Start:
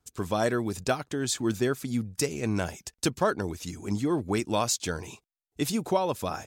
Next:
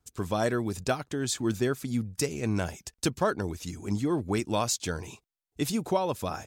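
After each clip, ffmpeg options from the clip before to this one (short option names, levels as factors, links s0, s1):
-af "lowshelf=f=120:g=4.5,volume=0.841"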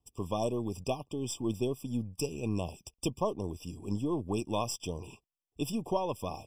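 -af "aeval=exprs='if(lt(val(0),0),0.708*val(0),val(0))':c=same,afftfilt=real='re*eq(mod(floor(b*sr/1024/1200),2),0)':imag='im*eq(mod(floor(b*sr/1024/1200),2),0)':win_size=1024:overlap=0.75,volume=0.708"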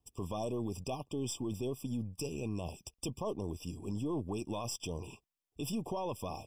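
-af "alimiter=level_in=1.68:limit=0.0631:level=0:latency=1:release=14,volume=0.596"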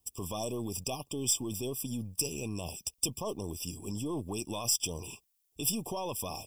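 -af "crystalizer=i=4:c=0"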